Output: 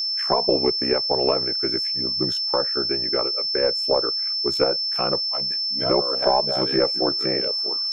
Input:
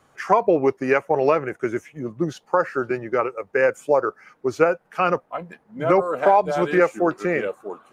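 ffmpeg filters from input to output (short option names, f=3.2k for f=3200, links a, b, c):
-filter_complex "[0:a]aeval=exprs='val(0)*sin(2*PI*32*n/s)':c=same,aeval=exprs='0.668*(cos(1*acos(clip(val(0)/0.668,-1,1)))-cos(1*PI/2))+0.0668*(cos(2*acos(clip(val(0)/0.668,-1,1)))-cos(2*PI/2))':c=same,acrossover=split=990[a][b];[a]agate=range=-18dB:threshold=-55dB:ratio=16:detection=peak[c];[b]acompressor=threshold=-39dB:ratio=6[d];[c][d]amix=inputs=2:normalize=0,aeval=exprs='val(0)+0.0355*sin(2*PI*5300*n/s)':c=same,highshelf=f=3.2k:g=9"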